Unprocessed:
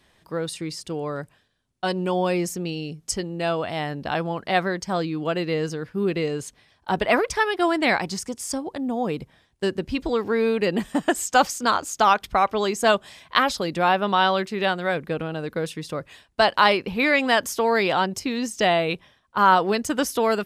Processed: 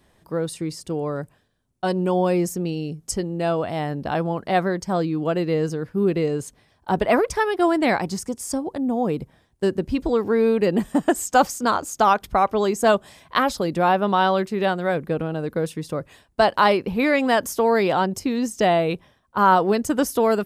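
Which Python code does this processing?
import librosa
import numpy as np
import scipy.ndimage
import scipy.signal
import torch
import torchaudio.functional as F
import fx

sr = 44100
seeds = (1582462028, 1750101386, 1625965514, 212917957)

y = fx.peak_eq(x, sr, hz=3100.0, db=-9.0, octaves=2.7)
y = y * librosa.db_to_amplitude(4.0)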